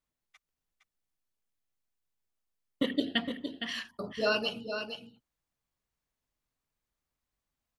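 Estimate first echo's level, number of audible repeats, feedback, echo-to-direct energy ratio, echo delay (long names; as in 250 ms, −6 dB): −8.0 dB, 1, repeats not evenly spaced, −8.0 dB, 462 ms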